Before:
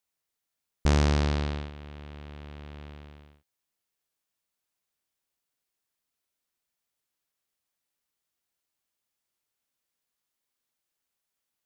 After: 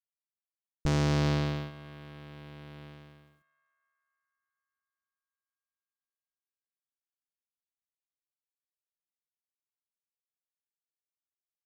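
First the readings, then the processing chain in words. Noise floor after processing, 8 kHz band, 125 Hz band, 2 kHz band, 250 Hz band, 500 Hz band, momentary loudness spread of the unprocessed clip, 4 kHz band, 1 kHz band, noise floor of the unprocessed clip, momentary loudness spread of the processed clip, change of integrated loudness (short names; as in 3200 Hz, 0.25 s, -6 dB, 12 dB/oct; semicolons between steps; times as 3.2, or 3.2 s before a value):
under -85 dBFS, -3.0 dB, -1.5 dB, -2.0 dB, -0.5 dB, -1.5 dB, 21 LU, -2.0 dB, -2.5 dB, -85 dBFS, 21 LU, -2.5 dB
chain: G.711 law mismatch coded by A; low shelf 410 Hz +3 dB; comb 6.2 ms, depth 80%; on a send: narrowing echo 0.247 s, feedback 74%, band-pass 1400 Hz, level -22.5 dB; on the sum: limiter -18.5 dBFS, peak gain reduction 5.5 dB; gain -1.5 dB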